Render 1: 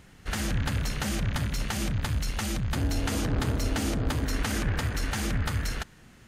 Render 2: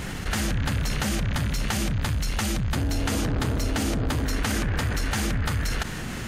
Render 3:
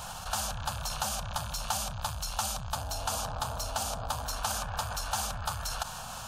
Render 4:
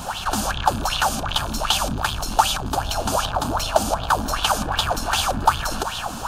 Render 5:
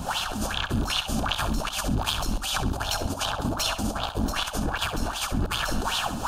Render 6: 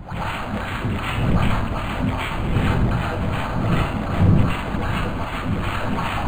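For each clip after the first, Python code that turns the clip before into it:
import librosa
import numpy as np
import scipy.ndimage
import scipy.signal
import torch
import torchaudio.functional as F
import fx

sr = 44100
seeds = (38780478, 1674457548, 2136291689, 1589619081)

y1 = fx.env_flatten(x, sr, amount_pct=70)
y2 = fx.low_shelf_res(y1, sr, hz=520.0, db=-12.0, q=1.5)
y2 = fx.fixed_phaser(y2, sr, hz=830.0, stages=4)
y3 = fx.octave_divider(y2, sr, octaves=1, level_db=1.0)
y3 = fx.echo_feedback(y3, sr, ms=616, feedback_pct=58, wet_db=-20.0)
y3 = fx.bell_lfo(y3, sr, hz=2.6, low_hz=220.0, high_hz=3500.0, db=18)
y3 = y3 * librosa.db_to_amplitude(6.0)
y4 = fx.over_compress(y3, sr, threshold_db=-25.0, ratio=-0.5)
y4 = fx.harmonic_tremolo(y4, sr, hz=2.6, depth_pct=70, crossover_hz=530.0)
y4 = fx.echo_feedback(y4, sr, ms=66, feedback_pct=31, wet_db=-11.5)
y5 = fx.dmg_wind(y4, sr, seeds[0], corner_hz=150.0, level_db=-27.0)
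y5 = fx.rev_plate(y5, sr, seeds[1], rt60_s=0.59, hf_ratio=0.95, predelay_ms=100, drr_db=-10.0)
y5 = np.interp(np.arange(len(y5)), np.arange(len(y5))[::8], y5[::8])
y5 = y5 * librosa.db_to_amplitude(-6.5)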